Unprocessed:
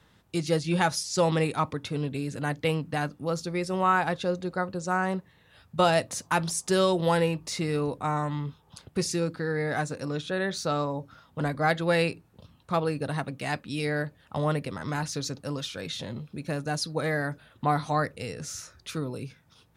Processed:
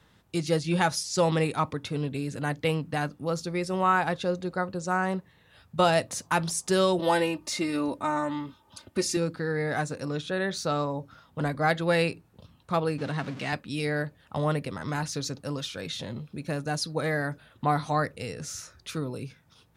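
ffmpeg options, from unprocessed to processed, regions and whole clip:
ffmpeg -i in.wav -filter_complex "[0:a]asettb=1/sr,asplit=3[link_01][link_02][link_03];[link_01]atrim=end=6.994[link_04];[link_02]atrim=start=6.99:end=9.17,asetpts=PTS-STARTPTS,afade=type=in:duration=0.004:curve=qsin,afade=type=out:start_time=2.176:duration=0.004:curve=qsin,highpass=94,aecho=1:1:3.3:0.74,atrim=end_sample=96138[link_05];[link_03]atrim=start=9.166[link_06];[link_04][link_05]acrossfade=duration=0.004:curve1=hsin:curve2=qsin[link_07];[link_07][link_06]acrossfade=duration=0.004:curve1=qsin:curve2=hsin,asettb=1/sr,asplit=3[link_08][link_09][link_10];[link_08]atrim=end=12.984[link_11];[link_09]atrim=start=12.98:end=13.53,asetpts=PTS-STARTPTS,afade=type=in:duration=0.004:curve=qsin,afade=type=out:start_time=0.546:duration=0.004:curve=qsin,aeval=exprs='val(0)+0.5*0.0188*sgn(val(0))':channel_layout=same,highpass=130,lowpass=5400,equalizer=frequency=690:width_type=o:width=1.4:gain=-4.5[link_12];[link_10]atrim=start=13.526[link_13];[link_11][link_12]acrossfade=duration=0.004:curve1=hsin:curve2=qsin[link_14];[link_14][link_13]acrossfade=duration=0.004:curve1=qsin:curve2=hsin" out.wav

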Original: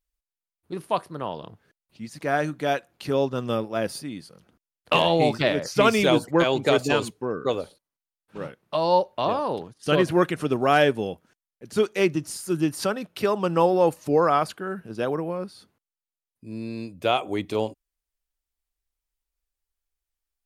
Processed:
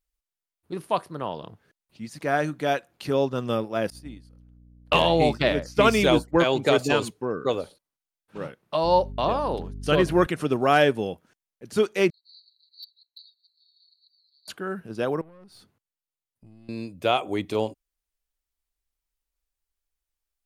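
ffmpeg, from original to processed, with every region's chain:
ffmpeg -i in.wav -filter_complex "[0:a]asettb=1/sr,asplit=3[link_01][link_02][link_03];[link_01]atrim=end=3.904[link_04];[link_02]atrim=start=3.9:end=6.38,asetpts=PTS-STARTPTS,afade=type=in:duration=0.004:curve=qsin,afade=type=out:start_time=2.476:duration=0.004:curve=qsin,aeval=exprs='val(0)+0.02*(sin(2*PI*60*n/s)+sin(2*PI*2*60*n/s)/2+sin(2*PI*3*60*n/s)/3+sin(2*PI*4*60*n/s)/4+sin(2*PI*5*60*n/s)/5)':channel_layout=same,agate=range=-33dB:threshold=-25dB:ratio=3:release=100:detection=peak[link_05];[link_03]atrim=start=6.376[link_06];[link_04][link_05]acrossfade=duration=0.004:curve1=hsin:curve2=qsin[link_07];[link_07][link_06]acrossfade=duration=0.004:curve1=qsin:curve2=hsin,asettb=1/sr,asplit=3[link_08][link_09][link_10];[link_08]atrim=end=8.844[link_11];[link_09]atrim=start=8.84:end=10.27,asetpts=PTS-STARTPTS,afade=type=in:duration=0.004:curve=qsin,afade=type=out:start_time=1.426:duration=0.004:curve=qsin,agate=range=-33dB:threshold=-45dB:ratio=3:release=100:detection=peak,bandreject=frequency=100.9:width_type=h:width=4,bandreject=frequency=201.8:width_type=h:width=4,bandreject=frequency=302.7:width_type=h:width=4,bandreject=frequency=403.6:width_type=h:width=4,aeval=exprs='val(0)+0.0178*(sin(2*PI*50*n/s)+sin(2*PI*2*50*n/s)/2+sin(2*PI*3*50*n/s)/3+sin(2*PI*4*50*n/s)/4+sin(2*PI*5*50*n/s)/5)':channel_layout=same[link_12];[link_10]atrim=start=10.266[link_13];[link_11][link_12]acrossfade=duration=0.004:curve1=hsin:curve2=qsin[link_14];[link_14][link_13]acrossfade=duration=0.004:curve1=qsin:curve2=hsin,asettb=1/sr,asplit=3[link_15][link_16][link_17];[link_15]atrim=end=12.104[link_18];[link_16]atrim=start=12.1:end=14.48,asetpts=PTS-STARTPTS,afade=type=in:duration=0.004:curve=qsin,afade=type=out:start_time=2.376:duration=0.004:curve=qsin,asuperpass=centerf=4200:order=12:qfactor=5.7,asoftclip=type=hard:threshold=-35dB[link_19];[link_17]atrim=start=14.476[link_20];[link_18][link_19]acrossfade=duration=0.004:curve1=hsin:curve2=qsin[link_21];[link_21][link_20]acrossfade=duration=0.004:curve1=qsin:curve2=hsin,asettb=1/sr,asplit=3[link_22][link_23][link_24];[link_22]atrim=end=15.214[link_25];[link_23]atrim=start=15.21:end=16.69,asetpts=PTS-STARTPTS,afade=type=in:duration=0.004:curve=qsin,afade=type=out:start_time=1.476:duration=0.004:curve=qsin,equalizer=frequency=110:width_type=o:width=1.2:gain=6.5,acompressor=threshold=-43dB:ratio=8:attack=3.2:release=140:knee=1:detection=peak,aeval=exprs='(tanh(178*val(0)+0.45)-tanh(0.45))/178':channel_layout=same[link_26];[link_24]atrim=start=16.686[link_27];[link_25][link_26]acrossfade=duration=0.004:curve1=hsin:curve2=qsin[link_28];[link_28][link_27]acrossfade=duration=0.004:curve1=qsin:curve2=hsin" out.wav

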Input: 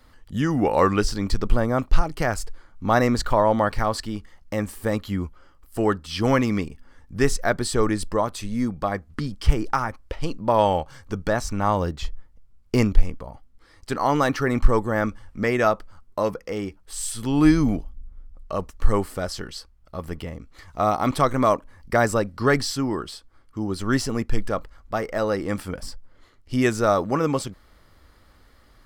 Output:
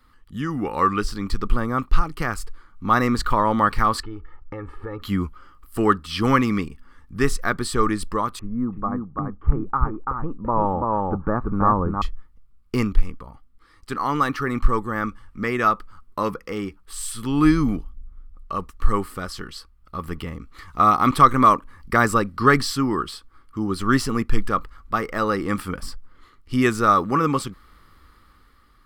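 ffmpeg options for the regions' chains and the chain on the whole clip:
ffmpeg -i in.wav -filter_complex "[0:a]asettb=1/sr,asplit=3[link_01][link_02][link_03];[link_01]atrim=end=4.034[link_04];[link_02]atrim=start=4.03:end=5.02,asetpts=PTS-STARTPTS,afade=type=in:duration=0.004:curve=qsin,afade=type=out:start_time=0.986:duration=0.004:curve=qsin,lowpass=1400,aecho=1:1:2.3:0.77,atrim=end_sample=43659,acompressor=threshold=-33dB:ratio=3:attack=3.2:release=140:knee=1:detection=peak[link_05];[link_03]atrim=start=5.016[link_06];[link_04][link_05]acrossfade=duration=0.004:curve1=hsin:curve2=qsin[link_07];[link_07][link_06]acrossfade=duration=0.004:curve1=qsin:curve2=hsin,asettb=1/sr,asplit=3[link_08][link_09][link_10];[link_08]atrim=end=8.394[link_11];[link_09]atrim=start=8.39:end=12.02,asetpts=PTS-STARTPTS,afade=type=in:duration=0.004:curve=qsin,afade=type=out:start_time=3.626:duration=0.004:curve=qsin,lowpass=frequency=1200:width=0.5412,lowpass=frequency=1200:width=1.3066,aecho=1:1:336:0.668,atrim=end_sample=160083[link_12];[link_10]atrim=start=12.016[link_13];[link_11][link_12]acrossfade=duration=0.004:curve1=hsin:curve2=qsin[link_14];[link_14][link_13]acrossfade=duration=0.004:curve1=qsin:curve2=hsin,equalizer=frequency=100:width_type=o:width=0.67:gain=-4,equalizer=frequency=630:width_type=o:width=0.67:gain=-11,equalizer=frequency=6300:width_type=o:width=0.67:gain=-6,dynaudnorm=framelen=240:gausssize=9:maxgain=11.5dB,equalizer=frequency=1200:width_type=o:width=0.27:gain=10,volume=-3.5dB" out.wav

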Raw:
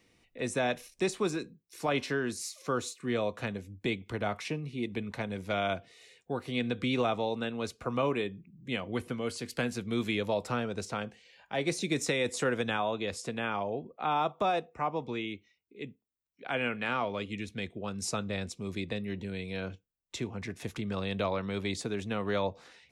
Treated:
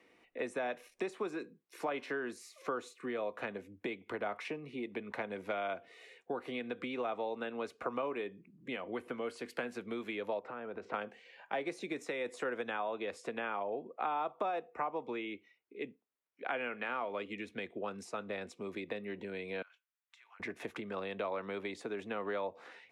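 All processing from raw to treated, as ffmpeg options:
ffmpeg -i in.wav -filter_complex "[0:a]asettb=1/sr,asplit=3[link_01][link_02][link_03];[link_01]atrim=end=10.394[link_04];[link_02]atrim=start=10.39:end=10.94,asetpts=PTS-STARTPTS,afade=type=in:duration=0.004:curve=qsin,afade=type=out:start_time=0.546:duration=0.004:curve=qsin,lowpass=2400,acompressor=threshold=-39dB:ratio=16:attack=3.2:release=140:knee=1:detection=peak[link_05];[link_03]atrim=start=10.936[link_06];[link_04][link_05]acrossfade=duration=0.004:curve1=hsin:curve2=qsin[link_07];[link_07][link_06]acrossfade=duration=0.004:curve1=qsin:curve2=hsin,asettb=1/sr,asplit=3[link_08][link_09][link_10];[link_08]atrim=end=19.624[link_11];[link_09]atrim=start=19.62:end=20.4,asetpts=PTS-STARTPTS,afade=type=in:duration=0.004:curve=qsin,afade=type=out:start_time=0.776:duration=0.004:curve=qsin,highpass=frequency=1200:width=0.5412,highpass=frequency=1200:width=1.3066,acompressor=threshold=-58dB:ratio=8:attack=3.2:release=140:knee=1:detection=peak[link_12];[link_10]atrim=start=20.396[link_13];[link_11][link_12]acrossfade=duration=0.004:curve1=hsin:curve2=qsin[link_14];[link_14][link_13]acrossfade=duration=0.004:curve1=qsin:curve2=hsin,aemphasis=mode=production:type=cd,acompressor=threshold=-37dB:ratio=6,acrossover=split=260 2500:gain=0.0891 1 0.0891[link_15][link_16][link_17];[link_15][link_16][link_17]amix=inputs=3:normalize=0,volume=5dB" out.wav

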